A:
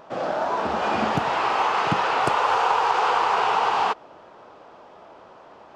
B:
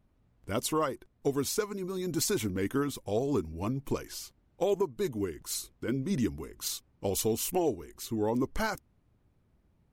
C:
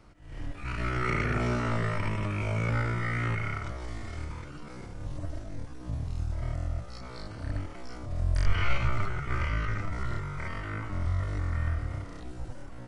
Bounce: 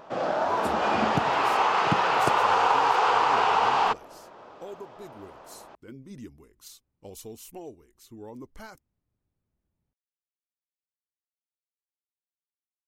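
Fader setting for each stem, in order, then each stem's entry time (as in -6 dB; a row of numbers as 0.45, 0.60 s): -1.0 dB, -13.0 dB, off; 0.00 s, 0.00 s, off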